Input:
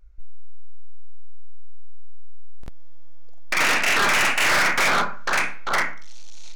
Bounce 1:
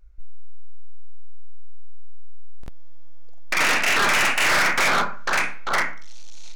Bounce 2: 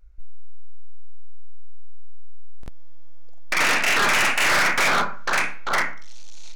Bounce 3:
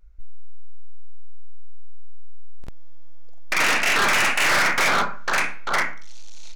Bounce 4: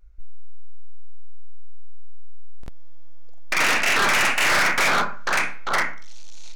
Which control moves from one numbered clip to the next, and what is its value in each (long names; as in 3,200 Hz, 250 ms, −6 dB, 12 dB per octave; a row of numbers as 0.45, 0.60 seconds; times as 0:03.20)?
pitch vibrato, speed: 16, 1.3, 0.38, 0.66 Hertz